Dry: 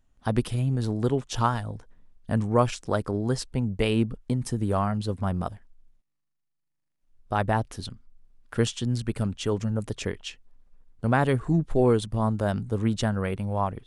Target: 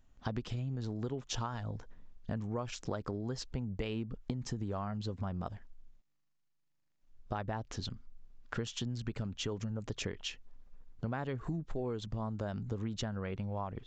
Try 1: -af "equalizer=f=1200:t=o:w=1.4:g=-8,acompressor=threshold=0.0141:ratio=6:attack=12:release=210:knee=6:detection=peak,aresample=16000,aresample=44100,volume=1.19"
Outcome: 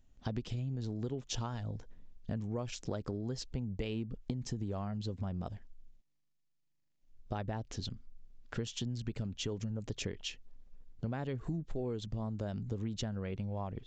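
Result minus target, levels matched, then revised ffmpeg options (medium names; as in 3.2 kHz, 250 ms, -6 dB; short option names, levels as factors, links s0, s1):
1 kHz band -4.0 dB
-af "acompressor=threshold=0.0141:ratio=6:attack=12:release=210:knee=6:detection=peak,aresample=16000,aresample=44100,volume=1.19"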